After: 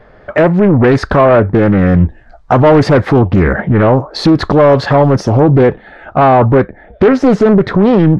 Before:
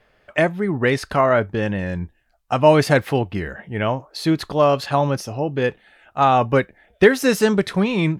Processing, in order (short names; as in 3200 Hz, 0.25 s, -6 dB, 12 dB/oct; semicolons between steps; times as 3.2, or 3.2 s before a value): recorder AGC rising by 8.5 dB/s; bell 2700 Hz -9.5 dB 0.61 oct; soft clip -13.5 dBFS, distortion -12 dB; tape spacing loss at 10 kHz 27 dB, from 5.52 s at 10 kHz 35 dB, from 6.52 s at 10 kHz 42 dB; maximiser +20.5 dB; Doppler distortion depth 0.51 ms; gain -1 dB